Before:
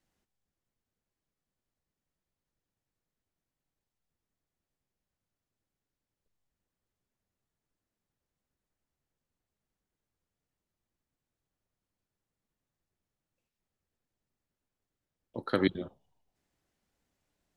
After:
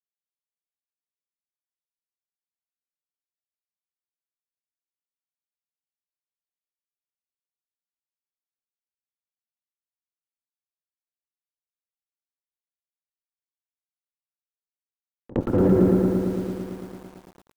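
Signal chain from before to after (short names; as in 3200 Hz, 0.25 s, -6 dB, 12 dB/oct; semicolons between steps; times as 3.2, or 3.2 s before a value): LPF 2200 Hz 24 dB/oct; Schroeder reverb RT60 1.4 s, combs from 32 ms, DRR 7 dB; fuzz box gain 37 dB, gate -46 dBFS; treble ducked by the level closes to 480 Hz; pre-echo 64 ms -20 dB; lo-fi delay 0.112 s, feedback 80%, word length 8-bit, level -4 dB; gain -1 dB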